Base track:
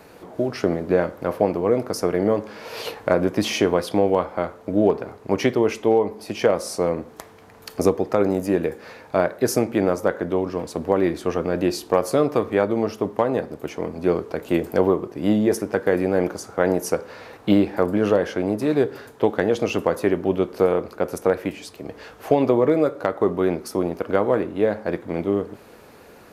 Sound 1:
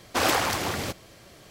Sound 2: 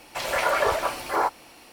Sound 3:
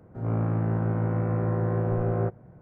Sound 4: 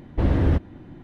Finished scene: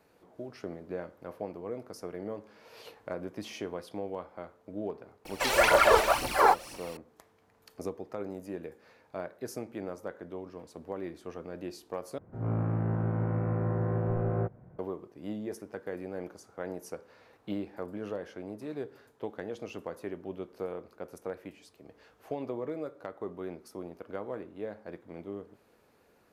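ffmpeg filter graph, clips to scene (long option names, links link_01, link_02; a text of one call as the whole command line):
ffmpeg -i bed.wav -i cue0.wav -i cue1.wav -i cue2.wav -filter_complex "[0:a]volume=-18.5dB[link_01];[2:a]aphaser=in_gain=1:out_gain=1:delay=2.7:decay=0.65:speed=2:type=triangular[link_02];[link_01]asplit=2[link_03][link_04];[link_03]atrim=end=12.184[link_05];[3:a]atrim=end=2.61,asetpts=PTS-STARTPTS,volume=-4dB[link_06];[link_04]atrim=start=14.786[link_07];[link_02]atrim=end=1.72,asetpts=PTS-STARTPTS,volume=-0.5dB,afade=type=in:duration=0.004:curve=hsin,afade=type=out:start_time=1.716:duration=0.004:curve=hsin,adelay=231525S[link_08];[link_05][link_06]acrossfade=duration=0.004:curve1=hsin:curve2=hsin[link_09];[link_09][link_07]acrossfade=duration=0.004:curve1=hsin:curve2=hsin[link_10];[link_10][link_08]amix=inputs=2:normalize=0" out.wav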